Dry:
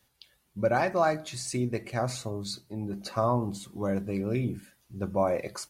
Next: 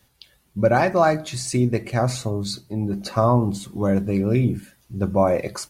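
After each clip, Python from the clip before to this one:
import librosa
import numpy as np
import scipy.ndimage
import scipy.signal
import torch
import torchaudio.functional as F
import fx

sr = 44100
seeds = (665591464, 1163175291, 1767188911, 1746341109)

y = fx.low_shelf(x, sr, hz=290.0, db=5.0)
y = y * librosa.db_to_amplitude(6.5)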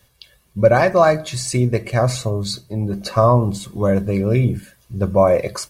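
y = x + 0.41 * np.pad(x, (int(1.8 * sr / 1000.0), 0))[:len(x)]
y = y * librosa.db_to_amplitude(3.0)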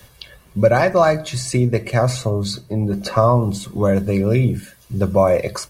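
y = fx.band_squash(x, sr, depth_pct=40)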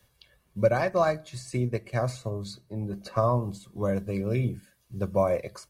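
y = fx.upward_expand(x, sr, threshold_db=-30.0, expansion=1.5)
y = y * librosa.db_to_amplitude(-7.5)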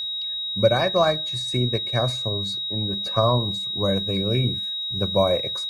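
y = x + 10.0 ** (-30.0 / 20.0) * np.sin(2.0 * np.pi * 3800.0 * np.arange(len(x)) / sr)
y = y * librosa.db_to_amplitude(4.0)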